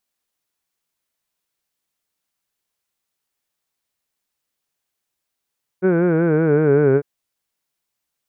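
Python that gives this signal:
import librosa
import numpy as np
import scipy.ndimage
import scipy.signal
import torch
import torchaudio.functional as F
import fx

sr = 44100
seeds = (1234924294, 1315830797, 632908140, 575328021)

y = fx.formant_vowel(sr, seeds[0], length_s=1.2, hz=181.0, glide_st=-5.0, vibrato_hz=5.3, vibrato_st=0.9, f1_hz=420.0, f2_hz=1500.0, f3_hz=2300.0)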